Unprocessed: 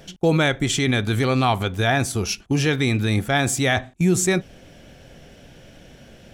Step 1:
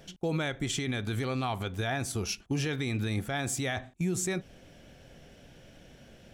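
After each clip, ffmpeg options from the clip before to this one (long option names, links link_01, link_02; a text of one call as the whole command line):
ffmpeg -i in.wav -af "alimiter=limit=-14.5dB:level=0:latency=1:release=102,volume=-7.5dB" out.wav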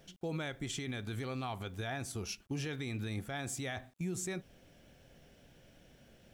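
ffmpeg -i in.wav -af "acrusher=bits=10:mix=0:aa=0.000001,volume=-7.5dB" out.wav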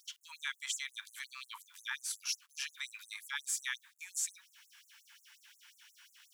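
ffmpeg -i in.wav -filter_complex "[0:a]asplit=2[link_01][link_02];[link_02]acompressor=threshold=-46dB:ratio=6,volume=-1.5dB[link_03];[link_01][link_03]amix=inputs=2:normalize=0,afftfilt=real='re*gte(b*sr/1024,830*pow(6700/830,0.5+0.5*sin(2*PI*5.6*pts/sr)))':imag='im*gte(b*sr/1024,830*pow(6700/830,0.5+0.5*sin(2*PI*5.6*pts/sr)))':win_size=1024:overlap=0.75,volume=4dB" out.wav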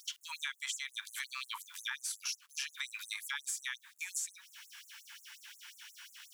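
ffmpeg -i in.wav -af "acompressor=threshold=-44dB:ratio=6,volume=8dB" out.wav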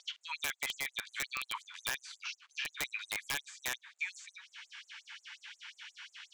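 ffmpeg -i in.wav -filter_complex "[0:a]highpass=frequency=430:width=0.5412,highpass=frequency=430:width=1.3066,equalizer=frequency=740:width_type=q:width=4:gain=3,equalizer=frequency=2200:width_type=q:width=4:gain=3,equalizer=frequency=5500:width_type=q:width=4:gain=-6,lowpass=frequency=5900:width=0.5412,lowpass=frequency=5900:width=1.3066,acrossover=split=4000[link_01][link_02];[link_02]acompressor=threshold=-55dB:ratio=4:attack=1:release=60[link_03];[link_01][link_03]amix=inputs=2:normalize=0,aeval=exprs='(mod(28.2*val(0)+1,2)-1)/28.2':channel_layout=same,volume=3.5dB" out.wav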